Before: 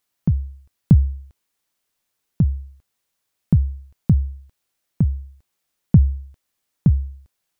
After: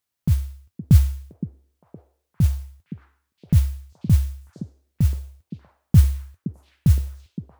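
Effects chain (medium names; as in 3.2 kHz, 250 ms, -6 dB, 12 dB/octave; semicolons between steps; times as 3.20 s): peaking EQ 88 Hz +10 dB 0.88 oct; modulation noise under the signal 24 dB; on a send: repeats whose band climbs or falls 517 ms, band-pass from 290 Hz, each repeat 0.7 oct, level -3 dB; on the sum: trim -6 dB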